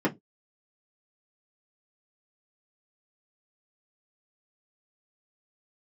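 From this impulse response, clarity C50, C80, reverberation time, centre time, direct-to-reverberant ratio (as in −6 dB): 23.0 dB, 31.5 dB, non-exponential decay, 16 ms, −4.5 dB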